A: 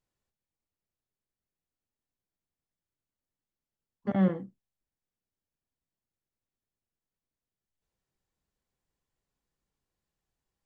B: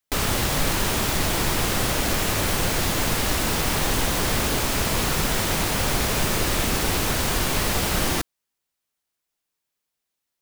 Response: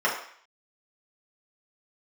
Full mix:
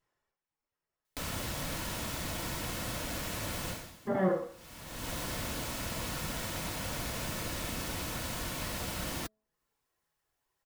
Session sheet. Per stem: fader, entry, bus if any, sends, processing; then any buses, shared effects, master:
-0.5 dB, 0.00 s, send -9 dB, reverb removal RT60 1.7 s; high shelf 2900 Hz -10 dB
-12.5 dB, 1.05 s, no send, notch comb 400 Hz; auto duck -23 dB, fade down 0.35 s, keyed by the first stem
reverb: on, RT60 0.55 s, pre-delay 3 ms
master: de-hum 216 Hz, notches 3; mismatched tape noise reduction encoder only

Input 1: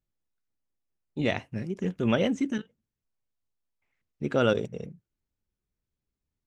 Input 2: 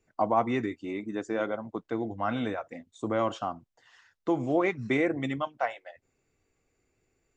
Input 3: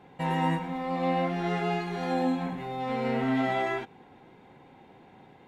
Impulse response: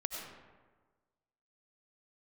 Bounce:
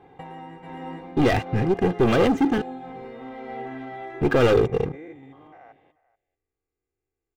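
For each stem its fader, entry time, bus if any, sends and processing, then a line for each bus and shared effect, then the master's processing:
-3.0 dB, 0.00 s, no bus, no send, no echo send, resonant high shelf 4300 Hz -6.5 dB, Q 1.5; sample leveller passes 5
-12.0 dB, 0.00 s, bus A, no send, echo send -21 dB, stepped spectrum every 0.2 s
+1.5 dB, 0.00 s, bus A, no send, echo send -10.5 dB, auto duck -18 dB, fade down 0.60 s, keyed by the first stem
bus A: 0.0 dB, compressor 10:1, threshold -36 dBFS, peak gain reduction 15.5 dB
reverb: off
echo: echo 0.434 s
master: high shelf 2400 Hz -10 dB; comb 2.5 ms, depth 53%

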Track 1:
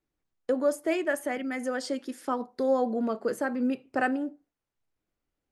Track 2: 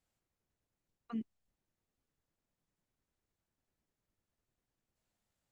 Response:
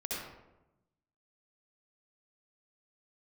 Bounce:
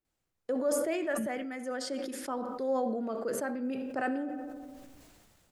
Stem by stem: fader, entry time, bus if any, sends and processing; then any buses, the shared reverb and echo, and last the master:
-8.5 dB, 0.00 s, send -17 dB, bell 630 Hz +2.5 dB
+1.0 dB, 0.05 s, no send, dry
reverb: on, RT60 0.95 s, pre-delay 58 ms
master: sustainer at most 27 dB/s

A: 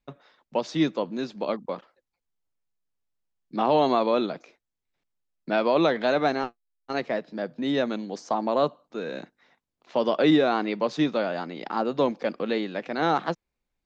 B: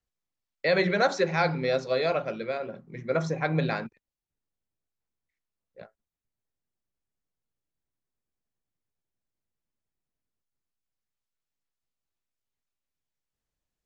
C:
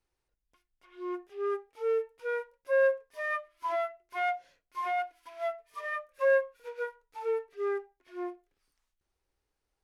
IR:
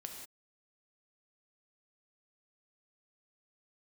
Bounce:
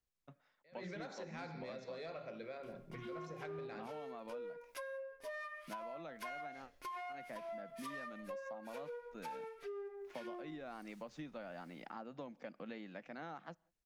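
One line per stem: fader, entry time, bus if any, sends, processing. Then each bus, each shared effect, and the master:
-14.5 dB, 0.20 s, no bus, send -23.5 dB, fifteen-band EQ 400 Hz -10 dB, 1000 Hz -4 dB, 4000 Hz -9 dB; vocal rider within 4 dB 0.5 s
-5.5 dB, 0.00 s, bus A, send -9.5 dB, attack slew limiter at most 280 dB/s
+2.5 dB, 2.10 s, bus A, send -9 dB, compressor, threshold -37 dBFS, peak gain reduction 15.5 dB; harmonic tremolo 1.3 Hz, depth 70%, crossover 890 Hz; AGC gain up to 12 dB
bus A: 0.0 dB, soft clip -27 dBFS, distortion -12 dB; compressor 2.5:1, threshold -47 dBFS, peak gain reduction 11.5 dB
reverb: on, pre-delay 3 ms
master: compressor, threshold -44 dBFS, peak gain reduction 12.5 dB

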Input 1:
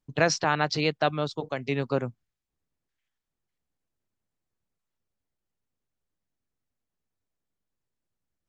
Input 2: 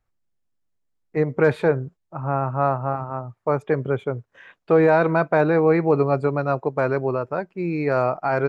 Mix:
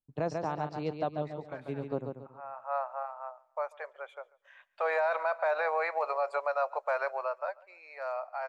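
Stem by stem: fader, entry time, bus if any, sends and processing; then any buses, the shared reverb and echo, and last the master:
-5.0 dB, 0.00 s, no send, echo send -6.5 dB, band shelf 3100 Hz -13 dB 2.6 oct; upward expander 1.5:1, over -40 dBFS
4.54 s -10 dB -> 4.91 s -1 dB -> 7.06 s -1 dB -> 7.84 s -13 dB, 0.10 s, no send, echo send -23.5 dB, Chebyshev high-pass 570 Hz, order 5; auto duck -17 dB, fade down 1.95 s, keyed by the first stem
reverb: off
echo: feedback echo 0.14 s, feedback 31%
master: limiter -21 dBFS, peak gain reduction 10.5 dB

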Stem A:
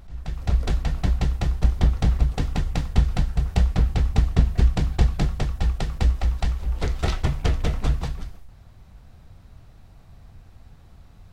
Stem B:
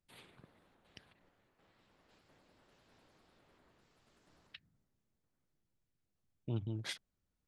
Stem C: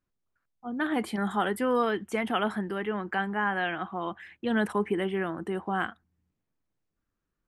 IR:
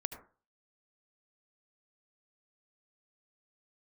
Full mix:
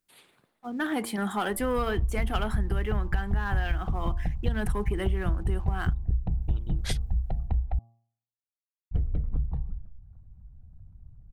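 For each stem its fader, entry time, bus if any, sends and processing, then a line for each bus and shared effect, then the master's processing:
-1.5 dB, 1.50 s, muted 7.79–8.91, no send, formant sharpening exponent 2; LPF 2200 Hz 12 dB/oct
+0.5 dB, 0.00 s, no send, AGC gain up to 5 dB; low shelf 200 Hz -11 dB; auto duck -15 dB, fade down 0.30 s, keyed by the third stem
-3.5 dB, 0.00 s, no send, sample leveller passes 1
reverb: off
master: high shelf 7200 Hz +11.5 dB; de-hum 115.6 Hz, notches 10; compressor, threshold -22 dBFS, peak gain reduction 10 dB

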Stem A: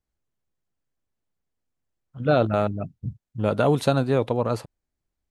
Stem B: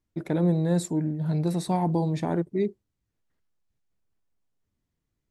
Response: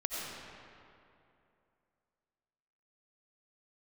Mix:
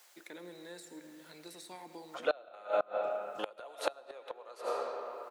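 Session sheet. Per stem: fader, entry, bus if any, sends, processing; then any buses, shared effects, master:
-2.5 dB, 0.00 s, send -6 dB, comb 5.7 ms, depth 31%; three-band squash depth 70%; auto duck -6 dB, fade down 0.20 s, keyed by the second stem
-3.0 dB, 0.00 s, send -10.5 dB, de-esser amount 90%; EQ curve 250 Hz 0 dB, 670 Hz -24 dB, 1900 Hz -10 dB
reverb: on, RT60 2.7 s, pre-delay 50 ms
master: HPF 510 Hz 24 dB/oct; flipped gate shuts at -18 dBFS, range -27 dB; mismatched tape noise reduction encoder only

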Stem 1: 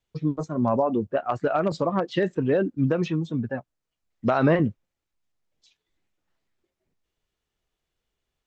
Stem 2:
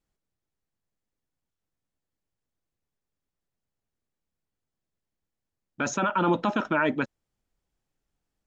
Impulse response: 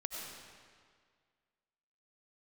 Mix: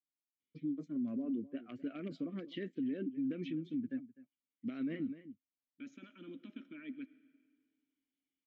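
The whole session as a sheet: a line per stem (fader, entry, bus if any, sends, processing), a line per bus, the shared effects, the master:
-1.0 dB, 0.40 s, no send, echo send -19.5 dB, auto duck -7 dB, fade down 1.95 s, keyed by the second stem
-13.0 dB, 0.00 s, send -14.5 dB, no echo send, dry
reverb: on, RT60 1.9 s, pre-delay 55 ms
echo: echo 0.253 s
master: vowel filter i; limiter -30.5 dBFS, peak gain reduction 11.5 dB

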